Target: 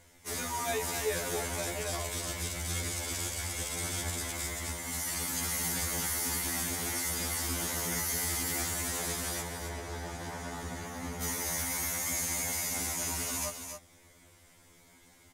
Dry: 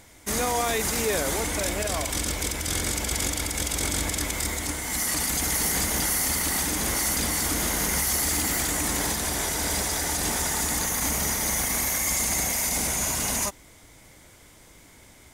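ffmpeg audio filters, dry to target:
-filter_complex "[0:a]asettb=1/sr,asplit=3[s0][s1][s2];[s0]atrim=end=9.414[s3];[s1]atrim=start=9.41:end=11.22,asetpts=PTS-STARTPTS,afade=t=in:d=0.004:c=qsin,afade=t=out:st=1.806:d=0.004:c=qsin,lowpass=f=1400:p=1[s4];[s2]atrim=start=11.216[s5];[s3][s4]acrossfade=d=0.004:c1=hsin:c2=qsin[s6];[s6][s5]acrossfade=d=0.004:c1=qsin:c2=hsin,aecho=1:1:272:0.422,afftfilt=real='re*2*eq(mod(b,4),0)':imag='im*2*eq(mod(b,4),0)':win_size=2048:overlap=0.75,volume=0.501"

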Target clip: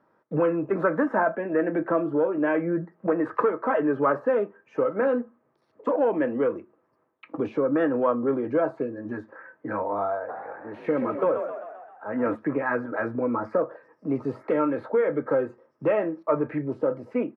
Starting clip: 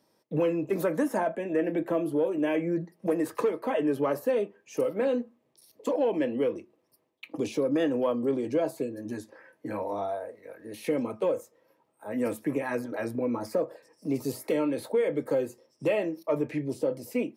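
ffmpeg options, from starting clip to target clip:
-filter_complex "[0:a]lowpass=f=1400:t=q:w=3.9,asplit=3[s0][s1][s2];[s0]afade=t=out:st=10.28:d=0.02[s3];[s1]asplit=8[s4][s5][s6][s7][s8][s9][s10][s11];[s5]adelay=131,afreqshift=48,volume=0.398[s12];[s6]adelay=262,afreqshift=96,volume=0.224[s13];[s7]adelay=393,afreqshift=144,volume=0.124[s14];[s8]adelay=524,afreqshift=192,volume=0.07[s15];[s9]adelay=655,afreqshift=240,volume=0.0394[s16];[s10]adelay=786,afreqshift=288,volume=0.0219[s17];[s11]adelay=917,afreqshift=336,volume=0.0123[s18];[s4][s12][s13][s14][s15][s16][s17][s18]amix=inputs=8:normalize=0,afade=t=in:st=10.28:d=0.02,afade=t=out:st=12.34:d=0.02[s19];[s2]afade=t=in:st=12.34:d=0.02[s20];[s3][s19][s20]amix=inputs=3:normalize=0,volume=1.26"

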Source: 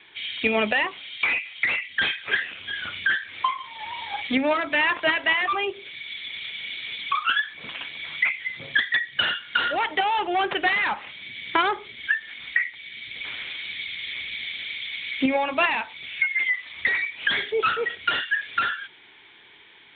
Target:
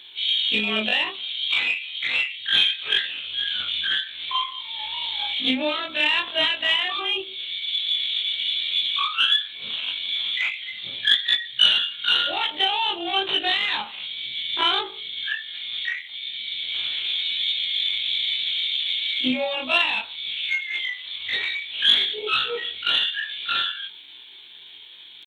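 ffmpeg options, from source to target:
-af "afftfilt=real='re':imag='-im':win_size=2048:overlap=0.75,aexciter=amount=7.3:drive=7.6:freq=3000,atempo=0.79"

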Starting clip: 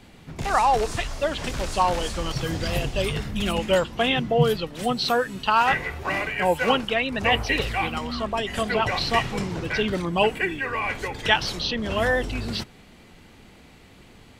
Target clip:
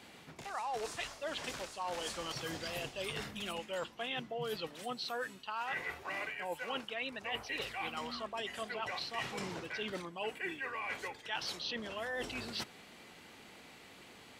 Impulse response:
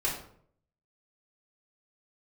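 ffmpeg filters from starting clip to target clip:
-af "highpass=f=500:p=1,areverse,acompressor=threshold=0.0158:ratio=6,areverse,volume=0.841"

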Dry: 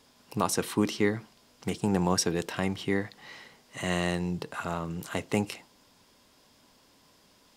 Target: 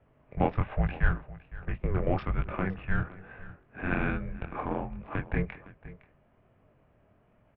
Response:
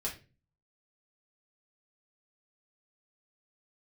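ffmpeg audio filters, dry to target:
-filter_complex "[0:a]flanger=delay=18:depth=7.2:speed=1.2,adynamicsmooth=sensitivity=4:basefreq=1600,asplit=2[s0][s1];[s1]aecho=0:1:511:0.126[s2];[s0][s2]amix=inputs=2:normalize=0,highpass=f=240:t=q:w=0.5412,highpass=f=240:t=q:w=1.307,lowpass=f=3000:t=q:w=0.5176,lowpass=f=3000:t=q:w=0.7071,lowpass=f=3000:t=q:w=1.932,afreqshift=-380,volume=2"

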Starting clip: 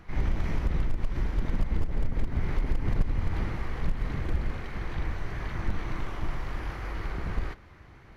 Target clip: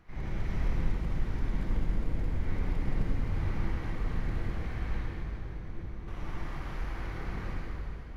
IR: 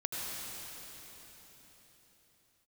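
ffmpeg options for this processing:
-filter_complex "[0:a]asettb=1/sr,asplit=3[s0][s1][s2];[s0]atrim=end=4.974[s3];[s1]atrim=start=4.97:end=6.08,asetpts=PTS-STARTPTS,afade=t=in:d=0.004:c=qsin,afade=t=out:st=1.106:d=0.004:c=qsin,acrossover=split=150|530[s4][s5][s6];[s4]acompressor=threshold=0.02:ratio=4[s7];[s5]acompressor=threshold=0.00501:ratio=4[s8];[s6]acompressor=threshold=0.00141:ratio=4[s9];[s7][s8][s9]amix=inputs=3:normalize=0[s10];[s2]atrim=start=6.076[s11];[s3][s10]acrossfade=d=0.004:c1=hsin:c2=qsin[s12];[s12][s11]acrossfade=d=0.004:c1=qsin:c2=hsin[s13];[1:a]atrim=start_sample=2205,asetrate=66150,aresample=44100[s14];[s13][s14]afir=irnorm=-1:irlink=0,volume=0.631"

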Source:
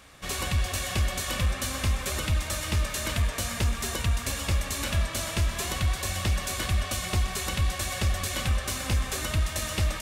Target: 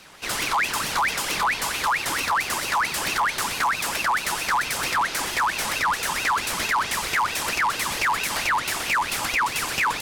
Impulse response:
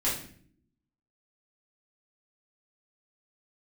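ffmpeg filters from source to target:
-af "asoftclip=type=hard:threshold=0.0631,aeval=exprs='val(0)*sin(2*PI*1800*n/s+1800*0.5/4.5*sin(2*PI*4.5*n/s))':c=same,volume=2.37"

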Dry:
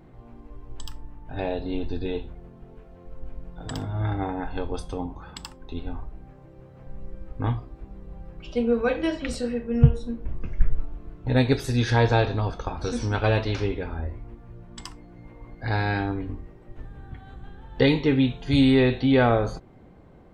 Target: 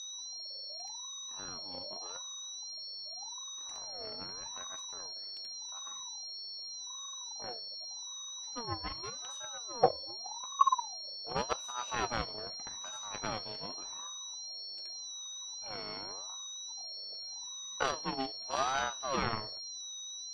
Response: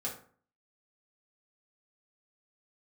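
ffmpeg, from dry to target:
-af "aeval=exprs='0.75*(cos(1*acos(clip(val(0)/0.75,-1,1)))-cos(1*PI/2))+0.0841*(cos(7*acos(clip(val(0)/0.75,-1,1)))-cos(7*PI/2))':c=same,aeval=exprs='val(0)+0.0316*sin(2*PI*4900*n/s)':c=same,aeval=exprs='val(0)*sin(2*PI*820*n/s+820*0.35/0.85*sin(2*PI*0.85*n/s))':c=same,volume=0.398"

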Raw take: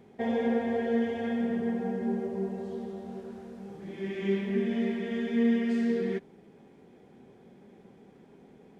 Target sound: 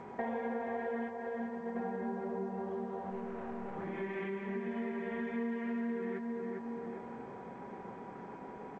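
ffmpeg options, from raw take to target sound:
-filter_complex "[0:a]asplit=3[s0][s1][s2];[s0]afade=t=out:st=1.08:d=0.02[s3];[s1]agate=range=0.0224:threshold=0.1:ratio=3:detection=peak,afade=t=in:st=1.08:d=0.02,afade=t=out:st=1.75:d=0.02[s4];[s2]afade=t=in:st=1.75:d=0.02[s5];[s3][s4][s5]amix=inputs=3:normalize=0,equalizer=f=1100:t=o:w=1.6:g=12.5,asplit=3[s6][s7][s8];[s6]afade=t=out:st=3.1:d=0.02[s9];[s7]aeval=exprs='(tanh(126*val(0)+0.55)-tanh(0.55))/126':c=same,afade=t=in:st=3.1:d=0.02,afade=t=out:st=3.76:d=0.02[s10];[s8]afade=t=in:st=3.76:d=0.02[s11];[s9][s10][s11]amix=inputs=3:normalize=0,asplit=3[s12][s13][s14];[s12]afade=t=out:st=4.64:d=0.02[s15];[s13]lowshelf=f=68:g=10,afade=t=in:st=4.64:d=0.02,afade=t=out:st=5.75:d=0.02[s16];[s14]afade=t=in:st=5.75:d=0.02[s17];[s15][s16][s17]amix=inputs=3:normalize=0,asplit=2[s18][s19];[s19]adelay=403,lowpass=f=1700:p=1,volume=0.355,asplit=2[s20][s21];[s21]adelay=403,lowpass=f=1700:p=1,volume=0.3,asplit=2[s22][s23];[s23]adelay=403,lowpass=f=1700:p=1,volume=0.3[s24];[s18][s20][s22][s24]amix=inputs=4:normalize=0,acompressor=threshold=0.00891:ratio=5,aeval=exprs='val(0)+0.00141*sin(2*PI*970*n/s)':c=same,lowpass=f=2600:w=0.5412,lowpass=f=2600:w=1.3066,bandreject=f=50:t=h:w=6,bandreject=f=100:t=h:w=6,bandreject=f=150:t=h:w=6,bandreject=f=200:t=h:w=6,bandreject=f=250:t=h:w=6,bandreject=f=300:t=h:w=6,bandreject=f=350:t=h:w=6,bandreject=f=400:t=h:w=6,bandreject=f=450:t=h:w=6,volume=1.68" -ar 16000 -c:a g722

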